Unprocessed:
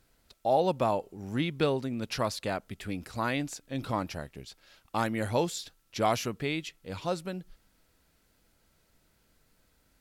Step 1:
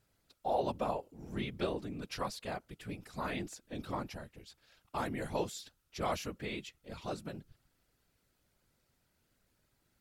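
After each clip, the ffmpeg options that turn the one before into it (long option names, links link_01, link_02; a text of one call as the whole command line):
ffmpeg -i in.wav -af "afftfilt=real='hypot(re,im)*cos(2*PI*random(0))':imag='hypot(re,im)*sin(2*PI*random(1))':win_size=512:overlap=0.75,volume=-1.5dB" out.wav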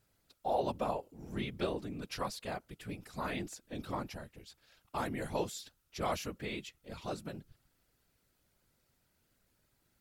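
ffmpeg -i in.wav -af "highshelf=frequency=11000:gain=4.5" out.wav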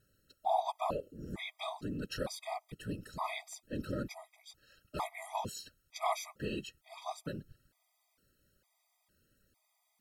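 ffmpeg -i in.wav -af "afftfilt=real='re*gt(sin(2*PI*1.1*pts/sr)*(1-2*mod(floor(b*sr/1024/640),2)),0)':imag='im*gt(sin(2*PI*1.1*pts/sr)*(1-2*mod(floor(b*sr/1024/640),2)),0)':win_size=1024:overlap=0.75,volume=3.5dB" out.wav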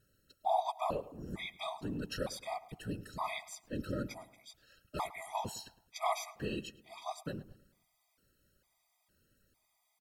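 ffmpeg -i in.wav -filter_complex "[0:a]asplit=2[link_01][link_02];[link_02]adelay=107,lowpass=frequency=2400:poles=1,volume=-17dB,asplit=2[link_03][link_04];[link_04]adelay=107,lowpass=frequency=2400:poles=1,volume=0.44,asplit=2[link_05][link_06];[link_06]adelay=107,lowpass=frequency=2400:poles=1,volume=0.44,asplit=2[link_07][link_08];[link_08]adelay=107,lowpass=frequency=2400:poles=1,volume=0.44[link_09];[link_01][link_03][link_05][link_07][link_09]amix=inputs=5:normalize=0" out.wav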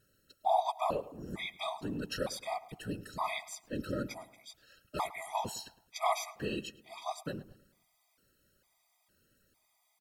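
ffmpeg -i in.wav -af "lowshelf=frequency=150:gain=-6,volume=3dB" out.wav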